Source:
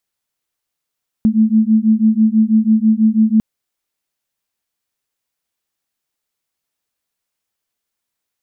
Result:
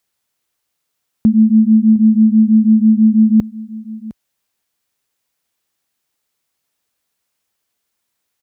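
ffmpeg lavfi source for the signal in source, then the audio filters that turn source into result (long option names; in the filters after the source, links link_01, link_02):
-f lavfi -i "aevalsrc='0.237*(sin(2*PI*216*t)+sin(2*PI*222.1*t))':duration=2.15:sample_rate=44100"
-filter_complex "[0:a]highpass=44,asplit=2[link_01][link_02];[link_02]alimiter=limit=-17dB:level=0:latency=1:release=36,volume=0dB[link_03];[link_01][link_03]amix=inputs=2:normalize=0,aecho=1:1:709:0.119"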